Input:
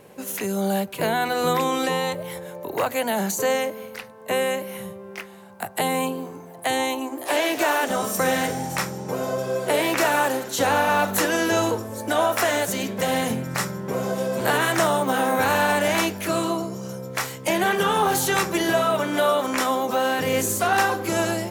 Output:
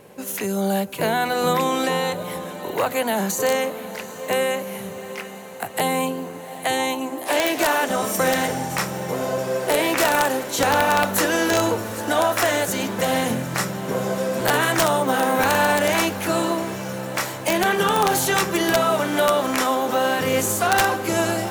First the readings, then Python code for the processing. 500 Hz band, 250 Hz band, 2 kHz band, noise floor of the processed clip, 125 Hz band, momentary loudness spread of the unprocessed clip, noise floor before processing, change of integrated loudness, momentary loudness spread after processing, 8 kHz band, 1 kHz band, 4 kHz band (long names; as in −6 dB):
+1.5 dB, +1.5 dB, +1.5 dB, −35 dBFS, +1.5 dB, 10 LU, −42 dBFS, +1.5 dB, 9 LU, +2.5 dB, +1.5 dB, +2.5 dB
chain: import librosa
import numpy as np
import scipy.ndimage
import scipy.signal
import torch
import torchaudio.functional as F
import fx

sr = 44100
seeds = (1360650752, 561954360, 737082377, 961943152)

y = (np.mod(10.0 ** (11.0 / 20.0) * x + 1.0, 2.0) - 1.0) / 10.0 ** (11.0 / 20.0)
y = fx.echo_diffused(y, sr, ms=763, feedback_pct=68, wet_db=-15)
y = y * librosa.db_to_amplitude(1.5)